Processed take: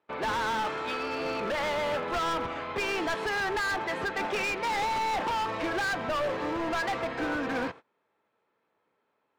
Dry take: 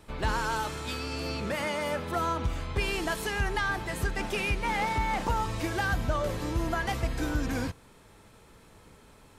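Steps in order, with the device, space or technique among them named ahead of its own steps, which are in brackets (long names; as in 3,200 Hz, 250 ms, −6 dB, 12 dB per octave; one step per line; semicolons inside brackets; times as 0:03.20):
walkie-talkie (band-pass filter 460–2,300 Hz; hard clipping −35 dBFS, distortion −7 dB; noise gate −52 dBFS, range −24 dB)
low-shelf EQ 230 Hz +6 dB
level +7.5 dB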